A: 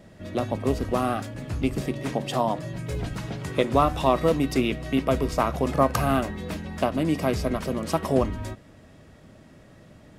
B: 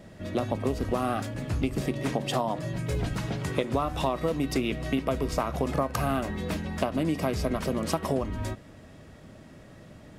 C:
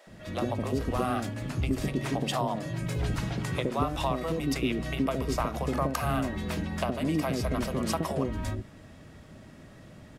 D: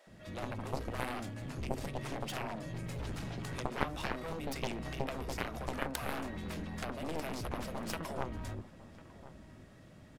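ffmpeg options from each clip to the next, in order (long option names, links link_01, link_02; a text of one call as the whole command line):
ffmpeg -i in.wav -af "acompressor=threshold=-24dB:ratio=12,volume=1.5dB" out.wav
ffmpeg -i in.wav -filter_complex "[0:a]acrossover=split=510[link_01][link_02];[link_01]adelay=70[link_03];[link_03][link_02]amix=inputs=2:normalize=0" out.wav
ffmpeg -i in.wav -filter_complex "[0:a]aeval=exprs='0.376*(cos(1*acos(clip(val(0)/0.376,-1,1)))-cos(1*PI/2))+0.0335*(cos(3*acos(clip(val(0)/0.376,-1,1)))-cos(3*PI/2))+0.0422*(cos(4*acos(clip(val(0)/0.376,-1,1)))-cos(4*PI/2))+0.0668*(cos(7*acos(clip(val(0)/0.376,-1,1)))-cos(7*PI/2))':channel_layout=same,asplit=2[link_01][link_02];[link_02]adelay=1050,volume=-16dB,highshelf=frequency=4000:gain=-23.6[link_03];[link_01][link_03]amix=inputs=2:normalize=0,volume=-1dB" out.wav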